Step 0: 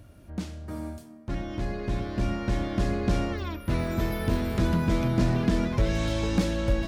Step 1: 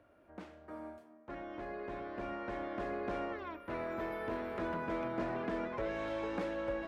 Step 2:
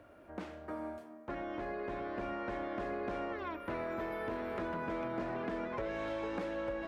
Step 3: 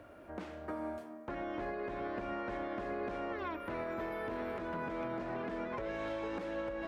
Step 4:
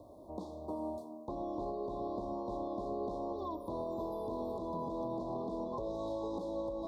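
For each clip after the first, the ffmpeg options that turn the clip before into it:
-filter_complex "[0:a]acrossover=split=340 2300:gain=0.0794 1 0.0891[a][b][c];[a][b][c]amix=inputs=3:normalize=0,volume=-4dB"
-af "acompressor=threshold=-45dB:ratio=3,volume=7.5dB"
-af "alimiter=level_in=9.5dB:limit=-24dB:level=0:latency=1:release=265,volume=-9.5dB,volume=3.5dB"
-af "asuperstop=centerf=2000:order=20:qfactor=0.81,volume=1dB"

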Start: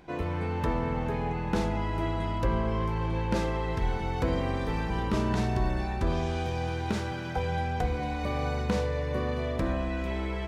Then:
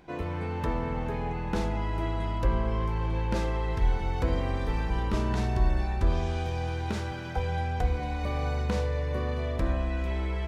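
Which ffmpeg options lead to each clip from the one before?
-af "asubboost=boost=2.5:cutoff=85,volume=-1.5dB"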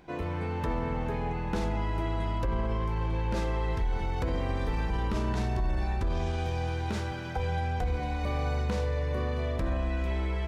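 -af "alimiter=limit=-21.5dB:level=0:latency=1:release=21"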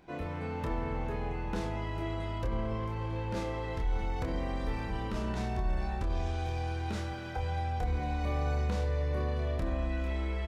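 -filter_complex "[0:a]asplit=2[a][b];[b]adelay=27,volume=-5dB[c];[a][c]amix=inputs=2:normalize=0,volume=-4.5dB"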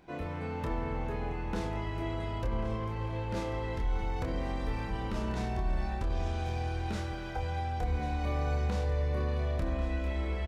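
-af "aecho=1:1:1092:0.224"

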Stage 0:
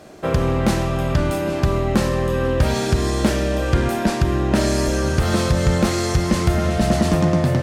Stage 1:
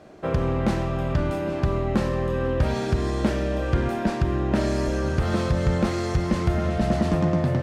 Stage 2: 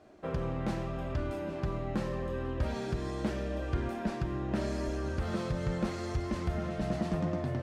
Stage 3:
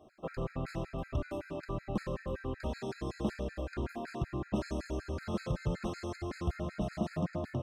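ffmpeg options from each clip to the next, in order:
-af "lowpass=f=2.5k:p=1,volume=-4.5dB"
-af "flanger=delay=2.8:depth=3.8:regen=-49:speed=0.8:shape=sinusoidal,volume=-6dB"
-af "afftfilt=real='re*gt(sin(2*PI*5.3*pts/sr)*(1-2*mod(floor(b*sr/1024/1300),2)),0)':imag='im*gt(sin(2*PI*5.3*pts/sr)*(1-2*mod(floor(b*sr/1024/1300),2)),0)':win_size=1024:overlap=0.75"

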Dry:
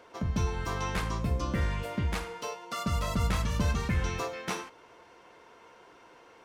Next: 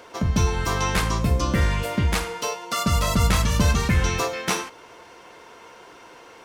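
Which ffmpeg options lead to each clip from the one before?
-af "highshelf=f=3.9k:g=6.5,volume=8.5dB"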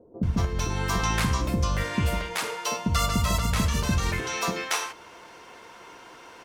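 -filter_complex "[0:a]acompressor=threshold=-20dB:ratio=6,bandreject=f=60:t=h:w=6,bandreject=f=120:t=h:w=6,acrossover=split=490[a][b];[b]adelay=230[c];[a][c]amix=inputs=2:normalize=0"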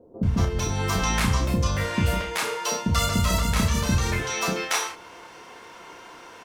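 -filter_complex "[0:a]asplit=2[a][b];[b]adelay=32,volume=-4dB[c];[a][c]amix=inputs=2:normalize=0,volume=1dB"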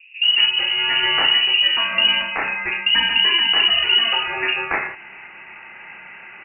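-af "lowpass=f=2.6k:t=q:w=0.5098,lowpass=f=2.6k:t=q:w=0.6013,lowpass=f=2.6k:t=q:w=0.9,lowpass=f=2.6k:t=q:w=2.563,afreqshift=-3000,volume=5.5dB"

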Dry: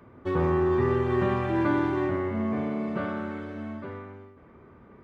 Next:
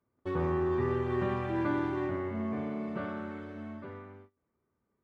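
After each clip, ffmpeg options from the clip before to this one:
-af "agate=range=-23dB:threshold=-45dB:ratio=16:detection=peak,volume=-6dB"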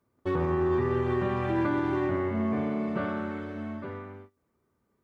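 -af "alimiter=level_in=0.5dB:limit=-24dB:level=0:latency=1:release=140,volume=-0.5dB,volume=6dB"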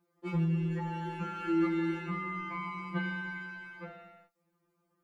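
-af "afftfilt=real='re*2.83*eq(mod(b,8),0)':imag='im*2.83*eq(mod(b,8),0)':win_size=2048:overlap=0.75,volume=1.5dB"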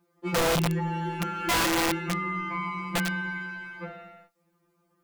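-af "aeval=exprs='(mod(21.1*val(0)+1,2)-1)/21.1':c=same,volume=6.5dB"

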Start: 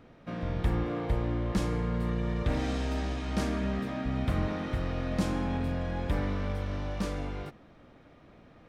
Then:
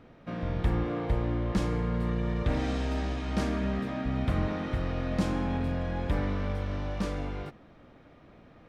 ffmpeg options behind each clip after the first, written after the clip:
-af "highshelf=f=7.2k:g=-7,volume=1dB"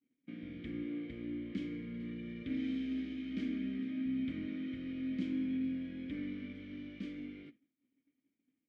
-filter_complex "[0:a]asplit=3[a][b][c];[a]bandpass=f=270:t=q:w=8,volume=0dB[d];[b]bandpass=f=2.29k:t=q:w=8,volume=-6dB[e];[c]bandpass=f=3.01k:t=q:w=8,volume=-9dB[f];[d][e][f]amix=inputs=3:normalize=0,agate=range=-33dB:threshold=-51dB:ratio=3:detection=peak,volume=1.5dB"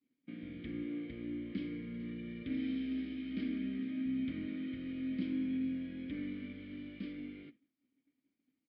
-af "aresample=11025,aresample=44100"

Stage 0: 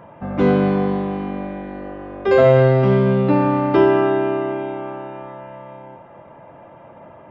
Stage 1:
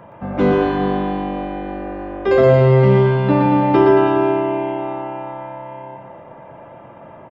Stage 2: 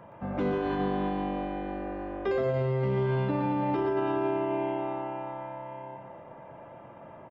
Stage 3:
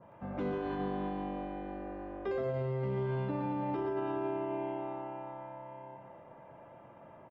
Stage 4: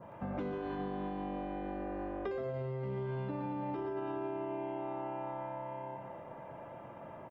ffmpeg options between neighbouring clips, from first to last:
-filter_complex "[0:a]acrossover=split=370[a][b];[b]acompressor=threshold=-16dB:ratio=3[c];[a][c]amix=inputs=2:normalize=0,asplit=2[d][e];[e]aecho=0:1:120|228|325.2|412.7|491.4:0.631|0.398|0.251|0.158|0.1[f];[d][f]amix=inputs=2:normalize=0,volume=1dB"
-af "alimiter=limit=-12.5dB:level=0:latency=1:release=61,volume=-8dB"
-af "adynamicequalizer=threshold=0.00631:dfrequency=1600:dqfactor=0.7:tfrequency=1600:tqfactor=0.7:attack=5:release=100:ratio=0.375:range=1.5:mode=cutabove:tftype=highshelf,volume=-6.5dB"
-af "acompressor=threshold=-41dB:ratio=6,volume=5.5dB"

